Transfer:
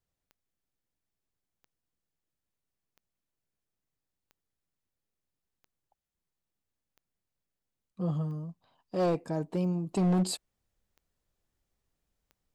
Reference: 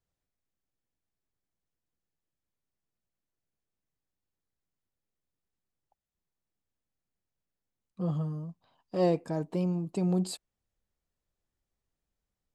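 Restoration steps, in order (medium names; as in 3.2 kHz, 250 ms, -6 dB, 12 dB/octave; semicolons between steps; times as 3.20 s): clip repair -22.5 dBFS; de-click; trim 0 dB, from 9.91 s -4.5 dB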